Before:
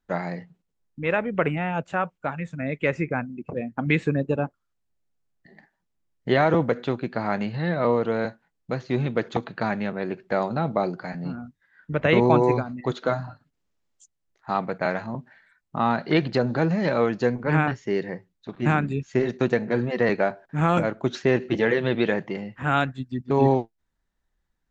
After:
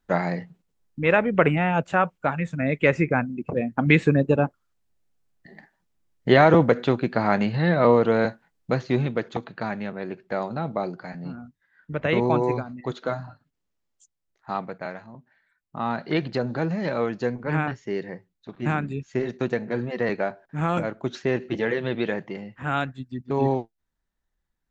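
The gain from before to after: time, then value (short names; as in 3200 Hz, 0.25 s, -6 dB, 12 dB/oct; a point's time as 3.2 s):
8.79 s +4.5 dB
9.3 s -3.5 dB
14.55 s -3.5 dB
15.13 s -13 dB
15.98 s -3.5 dB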